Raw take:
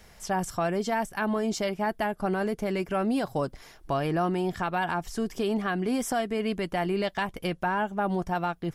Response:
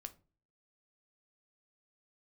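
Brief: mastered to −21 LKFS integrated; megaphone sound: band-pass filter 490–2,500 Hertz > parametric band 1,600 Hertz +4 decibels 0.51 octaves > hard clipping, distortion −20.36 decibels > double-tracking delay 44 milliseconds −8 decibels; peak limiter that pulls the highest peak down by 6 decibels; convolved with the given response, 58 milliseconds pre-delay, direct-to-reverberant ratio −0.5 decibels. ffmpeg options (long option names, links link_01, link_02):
-filter_complex "[0:a]alimiter=limit=-22dB:level=0:latency=1,asplit=2[link_01][link_02];[1:a]atrim=start_sample=2205,adelay=58[link_03];[link_02][link_03]afir=irnorm=-1:irlink=0,volume=5.5dB[link_04];[link_01][link_04]amix=inputs=2:normalize=0,highpass=490,lowpass=2500,equalizer=frequency=1600:width_type=o:width=0.51:gain=4,asoftclip=type=hard:threshold=-22dB,asplit=2[link_05][link_06];[link_06]adelay=44,volume=-8dB[link_07];[link_05][link_07]amix=inputs=2:normalize=0,volume=9.5dB"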